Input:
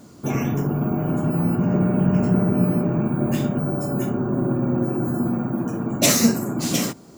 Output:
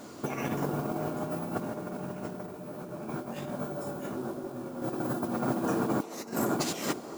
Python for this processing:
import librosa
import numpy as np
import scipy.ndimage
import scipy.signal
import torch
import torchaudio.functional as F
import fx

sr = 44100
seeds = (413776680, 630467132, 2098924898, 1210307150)

y = fx.bass_treble(x, sr, bass_db=-12, treble_db=-5)
y = fx.hum_notches(y, sr, base_hz=60, count=7)
y = fx.over_compress(y, sr, threshold_db=-32.0, ratio=-0.5)
y = fx.mod_noise(y, sr, seeds[0], snr_db=20)
y = fx.echo_wet_bandpass(y, sr, ms=220, feedback_pct=57, hz=580.0, wet_db=-12)
y = fx.detune_double(y, sr, cents=36, at=(2.46, 4.82))